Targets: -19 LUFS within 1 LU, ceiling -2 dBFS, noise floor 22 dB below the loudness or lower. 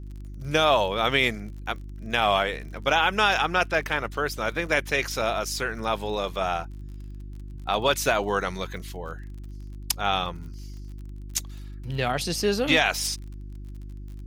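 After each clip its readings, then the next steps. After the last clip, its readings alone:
ticks 39/s; hum 50 Hz; harmonics up to 350 Hz; hum level -35 dBFS; loudness -25.0 LUFS; peak -6.0 dBFS; loudness target -19.0 LUFS
-> de-click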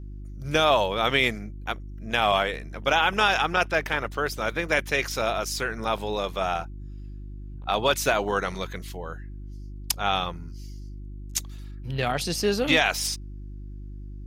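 ticks 0/s; hum 50 Hz; harmonics up to 350 Hz; hum level -35 dBFS
-> de-hum 50 Hz, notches 7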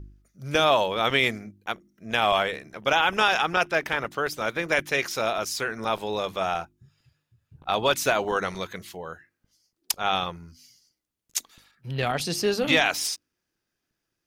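hum none; loudness -25.0 LUFS; peak -6.0 dBFS; loudness target -19.0 LUFS
-> gain +6 dB; limiter -2 dBFS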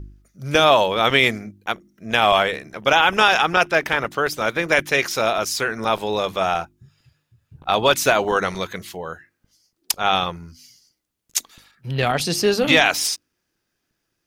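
loudness -19.0 LUFS; peak -2.0 dBFS; noise floor -76 dBFS

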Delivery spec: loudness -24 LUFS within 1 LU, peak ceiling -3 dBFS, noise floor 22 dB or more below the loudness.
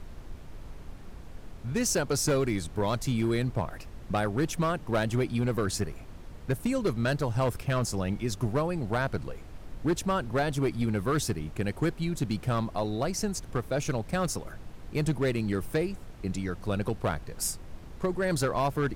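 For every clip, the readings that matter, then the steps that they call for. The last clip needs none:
clipped 1.3%; flat tops at -20.5 dBFS; noise floor -45 dBFS; noise floor target -52 dBFS; loudness -30.0 LUFS; peak -20.5 dBFS; loudness target -24.0 LUFS
-> clip repair -20.5 dBFS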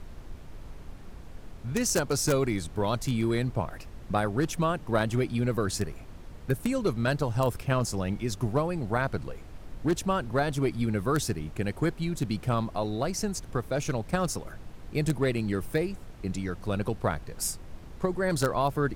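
clipped 0.0%; noise floor -45 dBFS; noise floor target -52 dBFS
-> noise print and reduce 7 dB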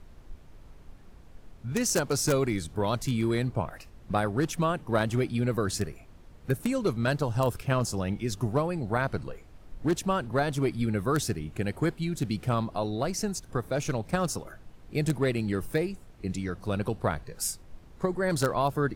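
noise floor -51 dBFS; noise floor target -52 dBFS
-> noise print and reduce 6 dB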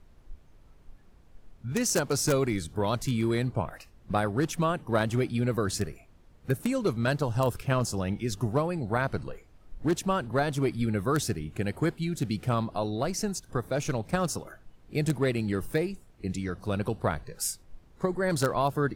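noise floor -57 dBFS; loudness -29.5 LUFS; peak -11.5 dBFS; loudness target -24.0 LUFS
-> gain +5.5 dB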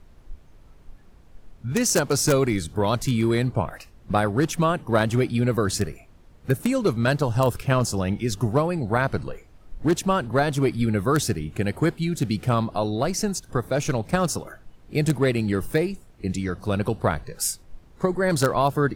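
loudness -24.0 LUFS; peak -6.0 dBFS; noise floor -51 dBFS

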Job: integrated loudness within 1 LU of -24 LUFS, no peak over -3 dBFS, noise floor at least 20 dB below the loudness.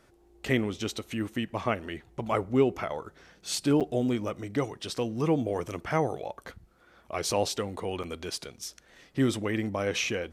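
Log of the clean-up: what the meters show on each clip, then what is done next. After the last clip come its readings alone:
dropouts 2; longest dropout 7.3 ms; loudness -30.5 LUFS; peak -10.5 dBFS; loudness target -24.0 LUFS
-> interpolate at 3.8/8.03, 7.3 ms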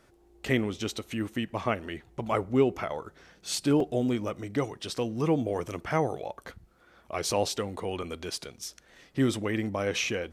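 dropouts 0; loudness -30.5 LUFS; peak -10.5 dBFS; loudness target -24.0 LUFS
-> gain +6.5 dB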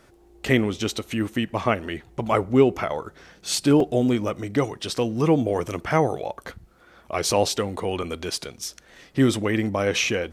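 loudness -24.0 LUFS; peak -4.0 dBFS; noise floor -55 dBFS

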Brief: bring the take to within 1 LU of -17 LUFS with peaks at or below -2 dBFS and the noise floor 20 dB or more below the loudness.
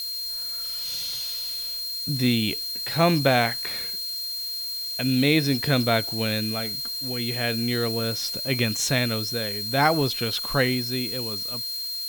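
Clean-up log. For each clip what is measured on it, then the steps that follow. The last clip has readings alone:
steady tone 4200 Hz; tone level -29 dBFS; noise floor -31 dBFS; noise floor target -45 dBFS; loudness -24.5 LUFS; peak -6.5 dBFS; loudness target -17.0 LUFS
-> notch 4200 Hz, Q 30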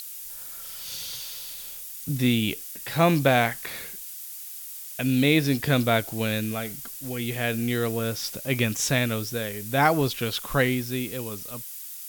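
steady tone none; noise floor -39 dBFS; noise floor target -46 dBFS
-> noise print and reduce 7 dB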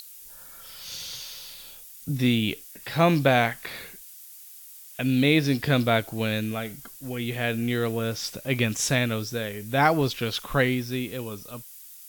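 noise floor -46 dBFS; loudness -25.5 LUFS; peak -7.0 dBFS; loudness target -17.0 LUFS
-> gain +8.5 dB; limiter -2 dBFS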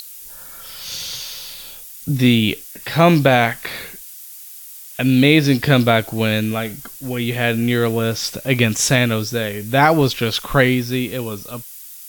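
loudness -17.5 LUFS; peak -2.0 dBFS; noise floor -38 dBFS

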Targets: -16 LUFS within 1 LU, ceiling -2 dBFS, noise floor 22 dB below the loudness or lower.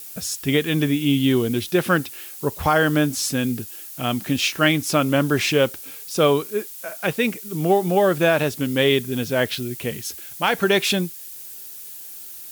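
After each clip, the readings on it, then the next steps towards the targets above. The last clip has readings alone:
noise floor -38 dBFS; noise floor target -43 dBFS; loudness -21.0 LUFS; peak -5.5 dBFS; loudness target -16.0 LUFS
-> denoiser 6 dB, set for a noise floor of -38 dBFS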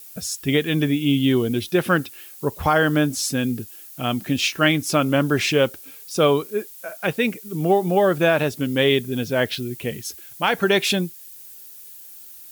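noise floor -42 dBFS; noise floor target -43 dBFS
-> denoiser 6 dB, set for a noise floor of -42 dBFS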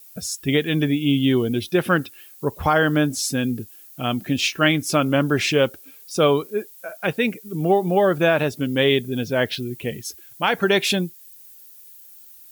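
noise floor -46 dBFS; loudness -21.0 LUFS; peak -6.0 dBFS; loudness target -16.0 LUFS
-> gain +5 dB; limiter -2 dBFS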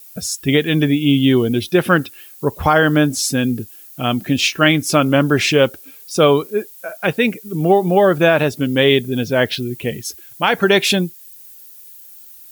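loudness -16.5 LUFS; peak -2.0 dBFS; noise floor -41 dBFS

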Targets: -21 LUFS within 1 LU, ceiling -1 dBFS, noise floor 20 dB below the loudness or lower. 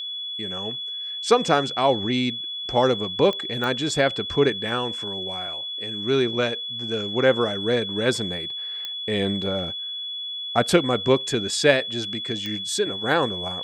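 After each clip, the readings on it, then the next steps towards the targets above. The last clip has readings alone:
clicks 4; steady tone 3400 Hz; tone level -29 dBFS; loudness -23.5 LUFS; peak -1.0 dBFS; loudness target -21.0 LUFS
-> de-click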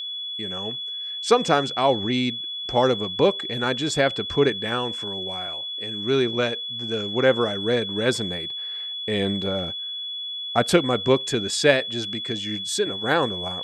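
clicks 0; steady tone 3400 Hz; tone level -29 dBFS
-> notch 3400 Hz, Q 30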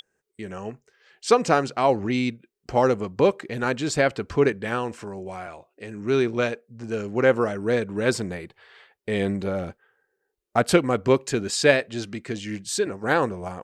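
steady tone none; loudness -24.0 LUFS; peak -1.5 dBFS; loudness target -21.0 LUFS
-> gain +3 dB; limiter -1 dBFS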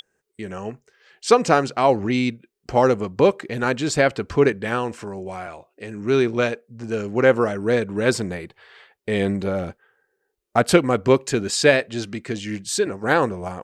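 loudness -21.0 LUFS; peak -1.0 dBFS; noise floor -75 dBFS

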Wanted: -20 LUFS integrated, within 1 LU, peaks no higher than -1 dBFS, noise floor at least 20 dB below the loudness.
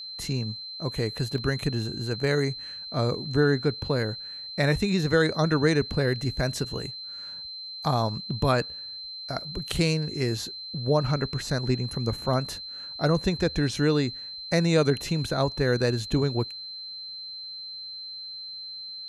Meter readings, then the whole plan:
dropouts 1; longest dropout 1.5 ms; steady tone 4100 Hz; tone level -36 dBFS; loudness -27.5 LUFS; peak -9.0 dBFS; loudness target -20.0 LUFS
-> interpolate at 1.38, 1.5 ms; notch 4100 Hz, Q 30; gain +7.5 dB

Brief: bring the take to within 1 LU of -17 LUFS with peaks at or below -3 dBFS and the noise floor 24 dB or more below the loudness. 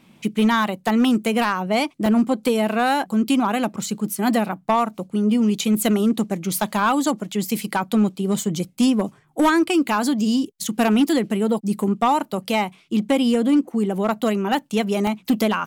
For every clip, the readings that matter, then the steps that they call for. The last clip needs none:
clipped 0.7%; flat tops at -11.5 dBFS; dropouts 2; longest dropout 2.2 ms; loudness -21.0 LUFS; peak -11.5 dBFS; loudness target -17.0 LUFS
-> clip repair -11.5 dBFS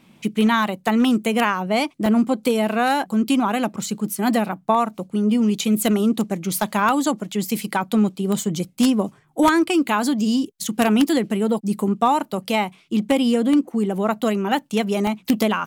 clipped 0.0%; dropouts 2; longest dropout 2.2 ms
-> interpolate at 2.06/15.07, 2.2 ms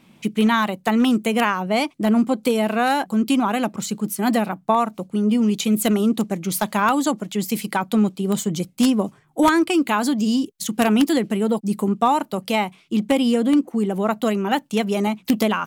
dropouts 0; loudness -20.5 LUFS; peak -2.5 dBFS; loudness target -17.0 LUFS
-> gain +3.5 dB; limiter -3 dBFS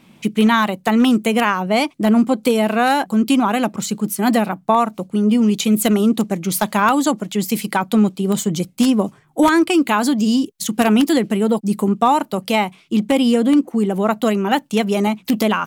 loudness -17.5 LUFS; peak -3.0 dBFS; noise floor -51 dBFS

